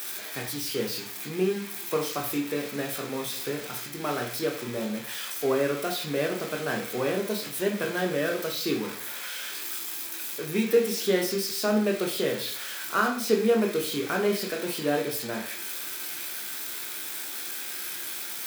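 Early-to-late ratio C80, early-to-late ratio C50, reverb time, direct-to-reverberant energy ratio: 12.0 dB, 8.0 dB, 0.50 s, 0.5 dB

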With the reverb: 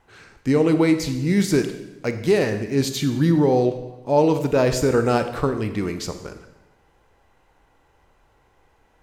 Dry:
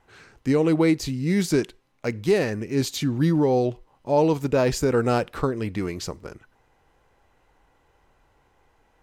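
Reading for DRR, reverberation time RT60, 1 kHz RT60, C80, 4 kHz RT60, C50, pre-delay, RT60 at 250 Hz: 8.0 dB, 1.0 s, 1.0 s, 11.5 dB, 0.90 s, 9.5 dB, 27 ms, 1.2 s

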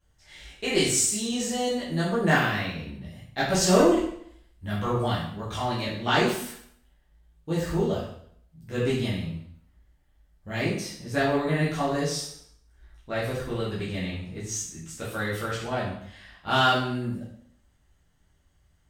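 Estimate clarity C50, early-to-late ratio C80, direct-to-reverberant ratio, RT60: 2.5 dB, 6.5 dB, -9.0 dB, 0.65 s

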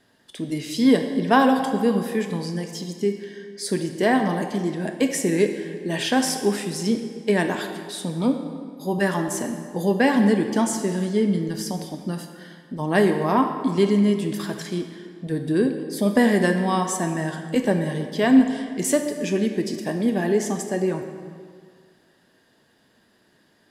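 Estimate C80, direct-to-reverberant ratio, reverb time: 8.0 dB, 5.0 dB, 1.9 s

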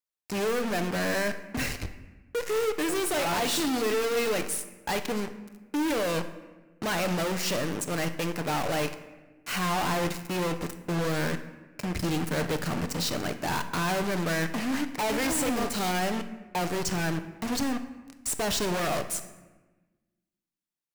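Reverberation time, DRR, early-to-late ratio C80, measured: 1.2 s, 8.0 dB, 13.5 dB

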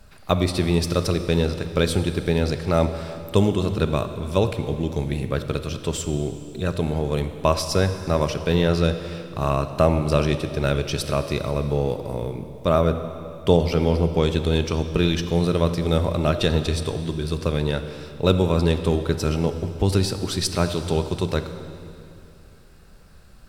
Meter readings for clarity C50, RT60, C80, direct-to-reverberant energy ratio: 9.5 dB, 2.7 s, 10.5 dB, 9.0 dB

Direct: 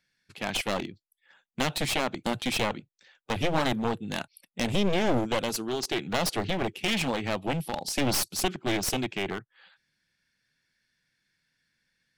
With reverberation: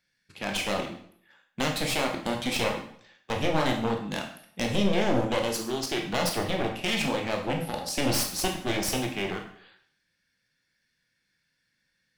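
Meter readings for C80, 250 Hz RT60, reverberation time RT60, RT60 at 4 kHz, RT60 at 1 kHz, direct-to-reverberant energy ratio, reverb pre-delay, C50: 10.5 dB, 0.60 s, 0.65 s, 0.55 s, 0.60 s, 2.0 dB, 12 ms, 7.0 dB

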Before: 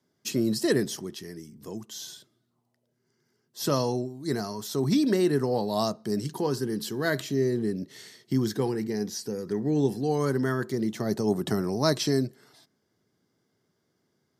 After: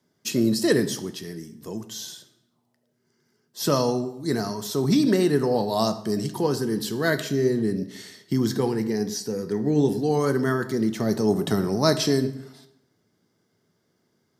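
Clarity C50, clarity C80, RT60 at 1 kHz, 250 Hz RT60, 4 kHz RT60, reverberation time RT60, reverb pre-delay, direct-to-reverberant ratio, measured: 13.5 dB, 15.5 dB, 0.80 s, 0.85 s, 0.65 s, 0.85 s, 3 ms, 9.0 dB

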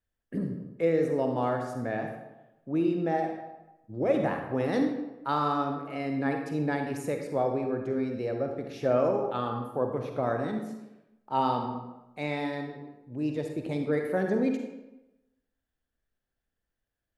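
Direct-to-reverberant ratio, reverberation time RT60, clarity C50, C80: 3.5 dB, 1.0 s, 4.0 dB, 7.0 dB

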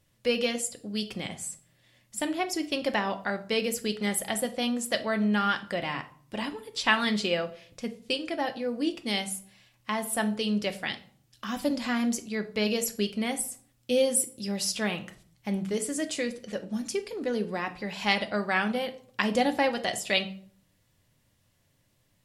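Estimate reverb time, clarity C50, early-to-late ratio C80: 0.55 s, 15.0 dB, 19.0 dB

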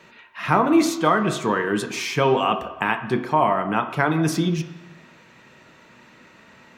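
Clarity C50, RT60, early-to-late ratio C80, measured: 10.5 dB, 1.1 s, 12.5 dB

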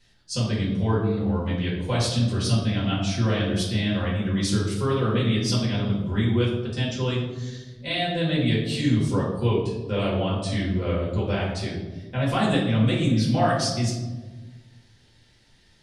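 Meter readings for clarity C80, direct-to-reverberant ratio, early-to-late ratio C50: 5.5 dB, -7.0 dB, 2.5 dB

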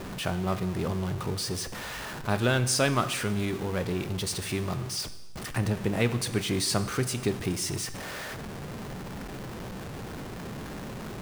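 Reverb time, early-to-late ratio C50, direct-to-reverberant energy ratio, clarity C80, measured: 1.1 s, 13.0 dB, 11.0 dB, 15.0 dB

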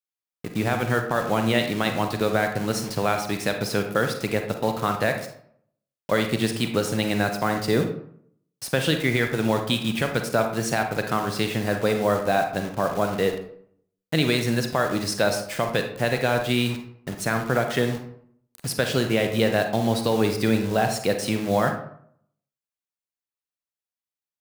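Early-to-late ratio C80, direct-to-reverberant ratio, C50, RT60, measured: 10.5 dB, 5.0 dB, 7.0 dB, 0.65 s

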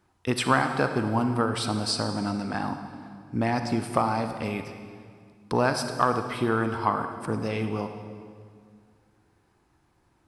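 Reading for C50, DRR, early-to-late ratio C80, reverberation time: 7.5 dB, 7.0 dB, 8.5 dB, 2.0 s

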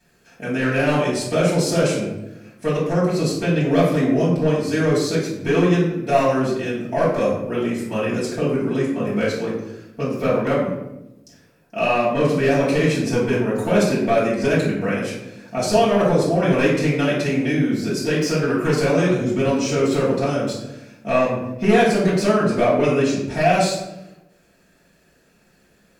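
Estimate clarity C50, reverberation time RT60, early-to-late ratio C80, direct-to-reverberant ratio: 2.5 dB, 0.95 s, 5.5 dB, -9.5 dB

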